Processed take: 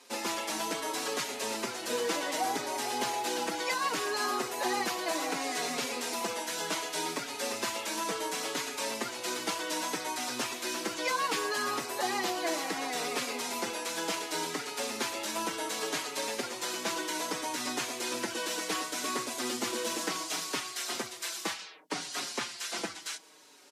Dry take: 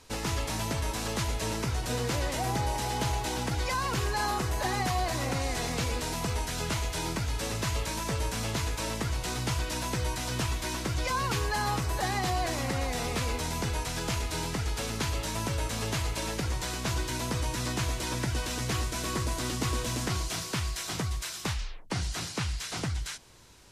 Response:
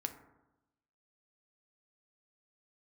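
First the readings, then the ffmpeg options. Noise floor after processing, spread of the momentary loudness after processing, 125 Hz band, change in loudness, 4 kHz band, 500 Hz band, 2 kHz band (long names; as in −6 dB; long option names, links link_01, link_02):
−44 dBFS, 4 LU, −23.5 dB, −1.5 dB, +0.5 dB, +0.5 dB, +0.5 dB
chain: -filter_complex "[0:a]highpass=frequency=260:width=0.5412,highpass=frequency=260:width=1.3066,asplit=2[link_01][link_02];[link_02]adelay=5.2,afreqshift=-0.67[link_03];[link_01][link_03]amix=inputs=2:normalize=1,volume=3.5dB"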